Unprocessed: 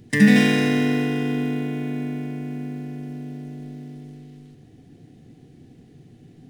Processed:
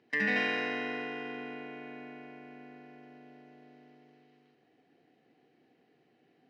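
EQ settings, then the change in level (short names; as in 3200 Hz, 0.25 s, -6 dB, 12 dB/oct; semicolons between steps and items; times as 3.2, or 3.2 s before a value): HPF 640 Hz 12 dB/oct; air absorption 270 m; notch 3500 Hz, Q 9.5; -4.0 dB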